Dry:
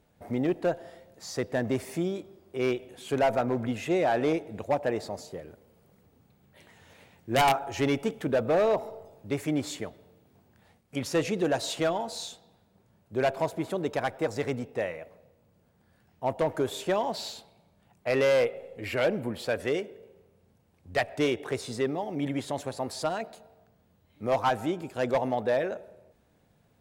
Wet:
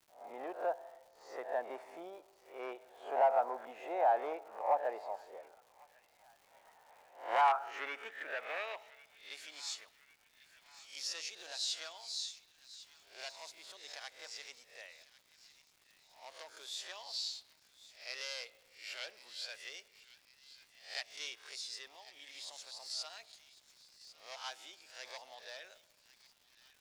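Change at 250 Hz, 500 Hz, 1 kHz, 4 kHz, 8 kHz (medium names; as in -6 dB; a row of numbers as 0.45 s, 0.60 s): -28.0 dB, -13.5 dB, -5.5 dB, -3.5 dB, -5.0 dB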